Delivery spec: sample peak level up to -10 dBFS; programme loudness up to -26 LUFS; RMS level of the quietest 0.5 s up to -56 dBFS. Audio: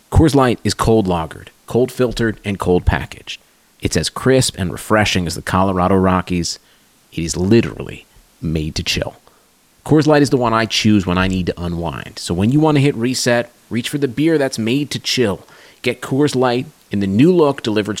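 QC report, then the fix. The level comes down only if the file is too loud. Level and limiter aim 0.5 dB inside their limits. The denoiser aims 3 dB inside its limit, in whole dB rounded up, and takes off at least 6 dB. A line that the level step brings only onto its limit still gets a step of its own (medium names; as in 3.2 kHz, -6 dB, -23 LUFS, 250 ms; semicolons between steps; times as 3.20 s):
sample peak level -2.0 dBFS: fail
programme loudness -16.5 LUFS: fail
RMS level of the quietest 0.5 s -53 dBFS: fail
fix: trim -10 dB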